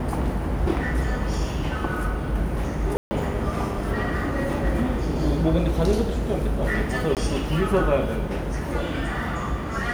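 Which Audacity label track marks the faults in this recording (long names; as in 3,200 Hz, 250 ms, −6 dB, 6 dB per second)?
2.970000	3.110000	drop-out 140 ms
7.150000	7.170000	drop-out 18 ms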